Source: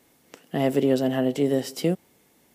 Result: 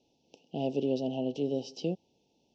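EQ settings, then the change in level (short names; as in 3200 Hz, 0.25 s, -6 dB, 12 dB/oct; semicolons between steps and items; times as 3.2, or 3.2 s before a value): Chebyshev band-stop 890–2600 Hz, order 4; elliptic low-pass 5900 Hz, stop band 50 dB; -7.5 dB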